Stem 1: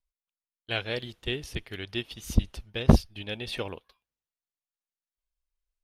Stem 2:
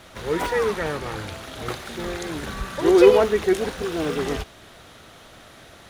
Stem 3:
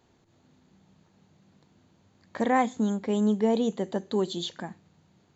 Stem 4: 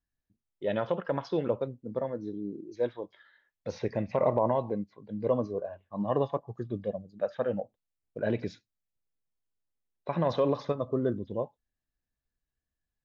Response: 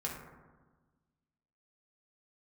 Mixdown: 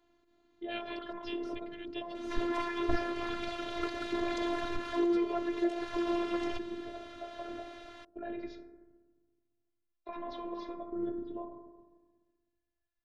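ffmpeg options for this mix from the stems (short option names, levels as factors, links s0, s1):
-filter_complex "[0:a]volume=0.422[s0];[1:a]acompressor=threshold=0.0447:ratio=5,adelay=2150,volume=1[s1];[2:a]volume=0.841[s2];[3:a]alimiter=level_in=1.06:limit=0.0631:level=0:latency=1:release=41,volume=0.944,volume=0.841,asplit=2[s3][s4];[s4]volume=0.562[s5];[s2][s3]amix=inputs=2:normalize=0,acompressor=threshold=0.0141:ratio=6,volume=1[s6];[4:a]atrim=start_sample=2205[s7];[s5][s7]afir=irnorm=-1:irlink=0[s8];[s0][s1][s6][s8]amix=inputs=4:normalize=0,lowpass=4200,afftfilt=real='hypot(re,im)*cos(PI*b)':imag='0':win_size=512:overlap=0.75"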